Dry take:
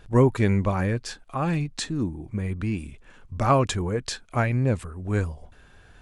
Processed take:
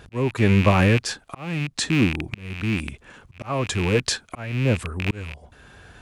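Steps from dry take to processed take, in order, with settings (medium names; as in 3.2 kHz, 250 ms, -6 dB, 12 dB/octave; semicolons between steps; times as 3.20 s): rattle on loud lows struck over -33 dBFS, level -21 dBFS; high-pass 59 Hz 12 dB/octave; slow attack 596 ms; trim +7.5 dB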